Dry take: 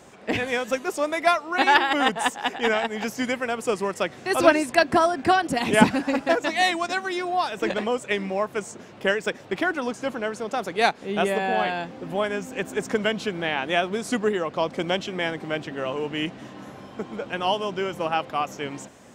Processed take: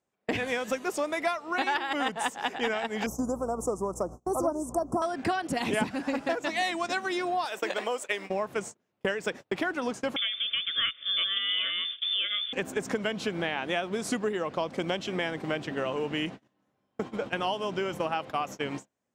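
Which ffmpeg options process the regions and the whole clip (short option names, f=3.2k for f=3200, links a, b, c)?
-filter_complex "[0:a]asettb=1/sr,asplit=3[a][b][c];[a]atrim=end=3.064[d];[b]atrim=start=3.06:end=5.02,asetpts=PTS-STARTPTS,afade=t=in:d=0.004:c=qsin,afade=t=out:st=1.956:d=0.004:c=qsin,asuperstop=centerf=2700:order=12:qfactor=0.59,aeval=exprs='val(0)+0.00708*(sin(2*PI*60*n/s)+sin(2*PI*2*60*n/s)/2+sin(2*PI*3*60*n/s)/3+sin(2*PI*4*60*n/s)/4+sin(2*PI*5*60*n/s)/5)':c=same[e];[c]atrim=start=5.016[f];[d][e]acrossfade=d=0.004:c1=hsin:c2=qsin[g];[g][f]acrossfade=d=0.004:c1=qsin:c2=hsin,asettb=1/sr,asplit=3[h][i][j];[h]atrim=end=7.454[k];[i]atrim=start=7.45:end=8.3,asetpts=PTS-STARTPTS,afade=t=in:d=0.004:c=qsin,afade=t=out:st=0.846:d=0.004:c=qsin,highpass=440,highshelf=f=11k:g=12[l];[j]atrim=start=8.296[m];[k][l]acrossfade=d=0.004:c1=hsin:c2=qsin[n];[n][m]acrossfade=d=0.004:c1=qsin:c2=hsin,asettb=1/sr,asplit=3[o][p][q];[o]atrim=end=10.164[r];[p]atrim=start=10.16:end=12.53,asetpts=PTS-STARTPTS,afade=t=in:d=0.004:c=qsin,afade=t=out:st=2.366:d=0.004:c=qsin,asuperstop=centerf=2800:order=20:qfactor=6.6,equalizer=f=140:w=1.2:g=10,lowpass=f=3.1k:t=q:w=0.5098,lowpass=f=3.1k:t=q:w=0.6013,lowpass=f=3.1k:t=q:w=0.9,lowpass=f=3.1k:t=q:w=2.563,afreqshift=-3700[s];[q]atrim=start=12.526[t];[r][s]acrossfade=d=0.004:c1=hsin:c2=qsin[u];[u][t]acrossfade=d=0.004:c1=qsin:c2=hsin,agate=range=-37dB:threshold=-34dB:ratio=16:detection=peak,acompressor=threshold=-30dB:ratio=4,volume=2.5dB"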